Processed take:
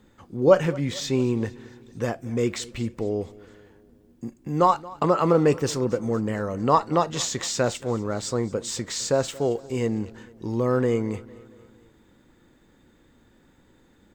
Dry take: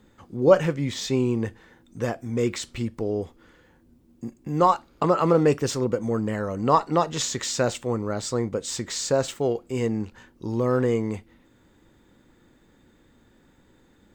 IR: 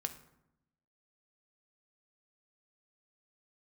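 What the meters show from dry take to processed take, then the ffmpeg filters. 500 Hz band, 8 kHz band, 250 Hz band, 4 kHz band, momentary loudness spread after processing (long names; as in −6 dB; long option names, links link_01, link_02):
0.0 dB, 0.0 dB, 0.0 dB, 0.0 dB, 12 LU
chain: -af "aecho=1:1:227|454|681|908:0.0891|0.0499|0.0279|0.0157"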